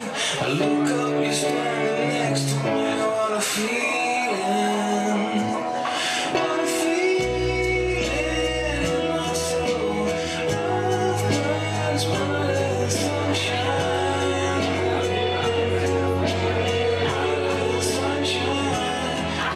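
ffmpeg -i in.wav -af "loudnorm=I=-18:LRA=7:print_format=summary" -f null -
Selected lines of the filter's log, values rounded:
Input Integrated:    -22.8 LUFS
Input True Peak:     -11.2 dBTP
Input LRA:             0.7 LU
Input Threshold:     -32.8 LUFS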